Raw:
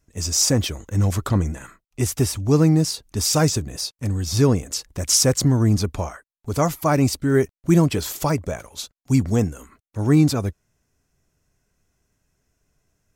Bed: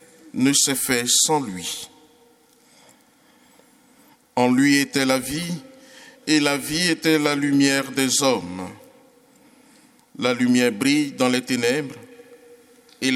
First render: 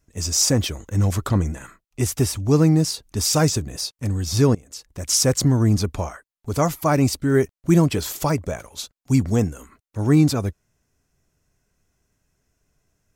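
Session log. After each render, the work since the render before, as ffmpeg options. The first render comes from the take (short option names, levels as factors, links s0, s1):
-filter_complex "[0:a]asplit=2[s0][s1];[s0]atrim=end=4.55,asetpts=PTS-STARTPTS,afade=t=out:st=4.546:d=0.004:c=hsin:silence=0.0891251[s2];[s1]atrim=start=4.55,asetpts=PTS-STARTPTS,afade=t=in:d=0.79:silence=0.0891251[s3];[s2][s3]concat=n=2:v=0:a=1"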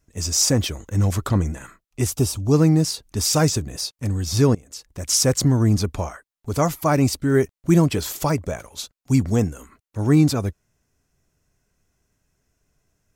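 -filter_complex "[0:a]asettb=1/sr,asplit=3[s0][s1][s2];[s0]atrim=end=2.104[s3];[s1]atrim=start=2.1:end=2.54,asetpts=PTS-STARTPTS,afade=t=in:d=0.004:c=qsin,afade=t=out:st=0.436:d=0.004:c=qsin,equalizer=f=1900:t=o:w=0.55:g=-13.5[s4];[s2]atrim=start=2.536[s5];[s3][s4]acrossfade=d=0.004:c1=hsin:c2=qsin[s6];[s6][s5]acrossfade=d=0.004:c1=qsin:c2=hsin"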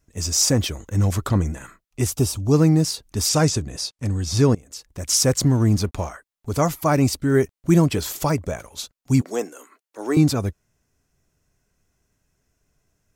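-filter_complex "[0:a]asettb=1/sr,asplit=3[s0][s1][s2];[s0]atrim=end=3.294[s3];[s1]atrim=start=3.29:end=4.5,asetpts=PTS-STARTPTS,afade=t=in:d=0.004:c=qsin,afade=t=out:st=1.206:d=0.004:c=qsin,lowpass=10000[s4];[s2]atrim=start=4.496[s5];[s3][s4]acrossfade=d=0.004:c1=hsin:c2=qsin[s6];[s6][s5]acrossfade=d=0.004:c1=qsin:c2=hsin,asettb=1/sr,asplit=3[s7][s8][s9];[s7]atrim=end=5.384[s10];[s8]atrim=start=5.38:end=6.09,asetpts=PTS-STARTPTS,afade=t=in:d=0.004:c=qsin,afade=t=out:st=0.706:d=0.004:c=qsin,aeval=exprs='sgn(val(0))*max(abs(val(0))-0.00447,0)':c=same[s11];[s9]atrim=start=6.086[s12];[s10][s11]acrossfade=d=0.004:c1=hsin:c2=qsin[s13];[s13][s12]acrossfade=d=0.004:c1=qsin:c2=hsin,asettb=1/sr,asplit=3[s14][s15][s16];[s14]atrim=end=9.214[s17];[s15]atrim=start=9.21:end=10.17,asetpts=PTS-STARTPTS,afade=t=in:d=0.004:c=qsin,afade=t=out:st=0.956:d=0.004:c=qsin,highpass=f=330:w=0.5412,highpass=f=330:w=1.3066[s18];[s16]atrim=start=10.166[s19];[s17][s18]acrossfade=d=0.004:c1=hsin:c2=qsin[s20];[s20][s19]acrossfade=d=0.004:c1=qsin:c2=hsin"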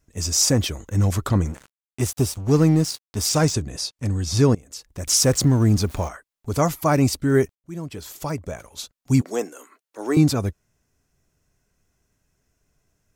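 -filter_complex "[0:a]asettb=1/sr,asplit=3[s0][s1][s2];[s0]atrim=end=1.454[s3];[s1]atrim=start=1.45:end=3.54,asetpts=PTS-STARTPTS,afade=t=in:d=0.004:c=qsin,afade=t=out:st=2.086:d=0.004:c=qsin,aeval=exprs='sgn(val(0))*max(abs(val(0))-0.0168,0)':c=same[s4];[s2]atrim=start=3.536[s5];[s3][s4]acrossfade=d=0.004:c1=hsin:c2=qsin[s6];[s6][s5]acrossfade=d=0.004:c1=qsin:c2=hsin,asettb=1/sr,asplit=3[s7][s8][s9];[s7]atrim=end=5.074[s10];[s8]atrim=start=5.07:end=6.08,asetpts=PTS-STARTPTS,afade=t=in:d=0.004:c=qsin,afade=t=out:st=1.006:d=0.004:c=qsin,aeval=exprs='val(0)+0.5*0.0224*sgn(val(0))':c=same[s11];[s9]atrim=start=6.076[s12];[s10][s11]acrossfade=d=0.004:c1=hsin:c2=qsin[s13];[s13][s12]acrossfade=d=0.004:c1=qsin:c2=hsin,asplit=2[s14][s15];[s14]atrim=end=7.55,asetpts=PTS-STARTPTS,afade=t=out:st=7.546:d=0.004:c=hsin[s16];[s15]atrim=start=7.55,asetpts=PTS-STARTPTS,afade=t=in:d=1.58[s17];[s16][s17]concat=n=2:v=0:a=1"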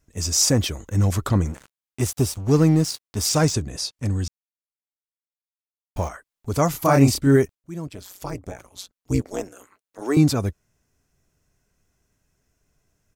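-filter_complex "[0:a]asplit=3[s0][s1][s2];[s0]afade=t=out:st=6.73:d=0.02[s3];[s1]asplit=2[s4][s5];[s5]adelay=29,volume=0.794[s6];[s4][s6]amix=inputs=2:normalize=0,afade=t=in:st=6.73:d=0.02,afade=t=out:st=7.35:d=0.02[s7];[s2]afade=t=in:st=7.35:d=0.02[s8];[s3][s7][s8]amix=inputs=3:normalize=0,asettb=1/sr,asplit=3[s9][s10][s11];[s9]atrim=end=7.874[s12];[s10]atrim=start=7.87:end=10.02,asetpts=PTS-STARTPTS,afade=t=in:d=0.004:c=qsin,afade=t=out:st=2.146:d=0.004:c=qsin,tremolo=f=190:d=0.947[s13];[s11]atrim=start=10.016[s14];[s12][s13]acrossfade=d=0.004:c1=hsin:c2=qsin[s15];[s15][s14]acrossfade=d=0.004:c1=qsin:c2=hsin,asplit=3[s16][s17][s18];[s16]atrim=end=4.28,asetpts=PTS-STARTPTS,afade=t=out:st=4.276:d=0.004:c=hsin[s19];[s17]atrim=start=4.28:end=5.96,asetpts=PTS-STARTPTS,volume=0[s20];[s18]atrim=start=5.96,asetpts=PTS-STARTPTS,afade=t=in:d=0.004:c=hsin[s21];[s19][s20][s21]concat=n=3:v=0:a=1"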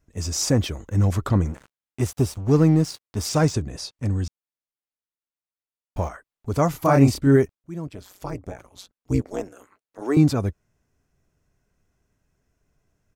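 -af "highshelf=f=3200:g=-8.5"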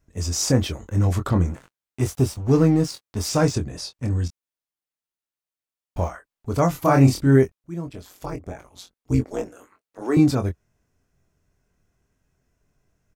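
-filter_complex "[0:a]asplit=2[s0][s1];[s1]adelay=23,volume=0.447[s2];[s0][s2]amix=inputs=2:normalize=0"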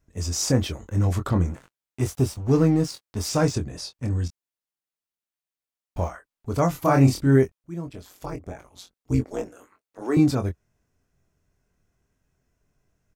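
-af "volume=0.794"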